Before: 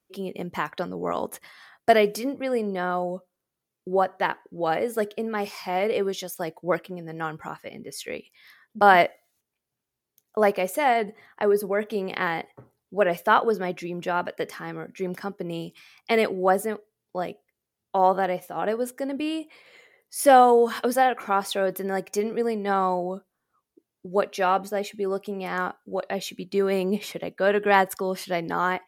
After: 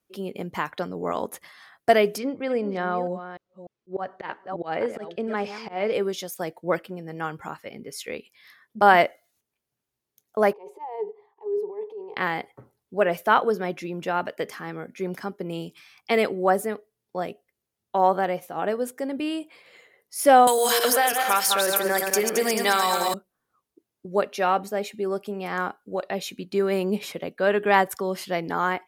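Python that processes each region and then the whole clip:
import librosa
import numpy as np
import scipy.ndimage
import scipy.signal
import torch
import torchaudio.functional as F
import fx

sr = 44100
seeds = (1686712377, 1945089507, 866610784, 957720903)

y = fx.chain(x, sr, fx.reverse_delay(ms=298, wet_db=-11.5),
    fx.lowpass(hz=4900.0, slope=12),
    fx.auto_swell(attack_ms=159.0), at=(2.18, 5.93))
y = fx.chain(y, sr, fx.transient(attack_db=-11, sustain_db=9),
    fx.double_bandpass(hz=620.0, octaves=1.1),
    fx.fixed_phaser(hz=590.0, stages=4), at=(10.53, 12.17))
y = fx.chain(y, sr, fx.reverse_delay_fb(ms=109, feedback_pct=58, wet_db=-6),
    fx.tilt_eq(slope=4.0),
    fx.band_squash(depth_pct=100), at=(20.47, 23.14))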